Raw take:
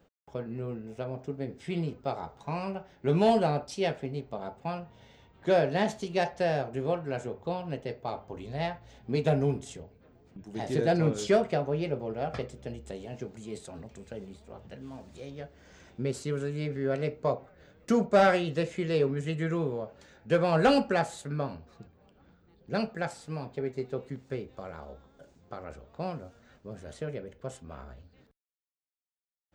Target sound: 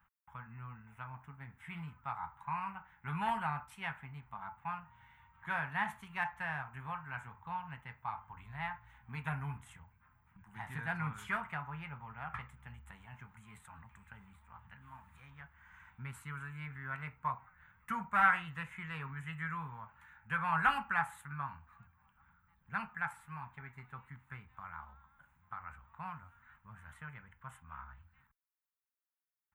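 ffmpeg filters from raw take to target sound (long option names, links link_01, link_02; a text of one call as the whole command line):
ffmpeg -i in.wav -af "firequalizer=gain_entry='entry(100,0);entry(210,-9);entry(340,-27);entry(580,-24);entry(900,9);entry(1300,10);entry(2100,6);entry(4800,-22);entry(11000,8)':delay=0.05:min_phase=1,volume=-7dB" out.wav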